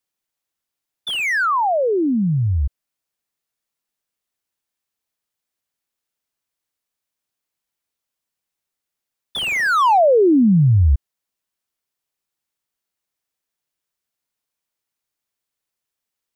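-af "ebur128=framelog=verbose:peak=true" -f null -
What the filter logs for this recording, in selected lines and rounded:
Integrated loudness:
  I:         -16.7 LUFS
  Threshold: -27.0 LUFS
Loudness range:
  LRA:        12.4 LU
  Threshold: -40.1 LUFS
  LRA low:   -29.7 LUFS
  LRA high:  -17.2 LUFS
True peak:
  Peak:       -9.6 dBFS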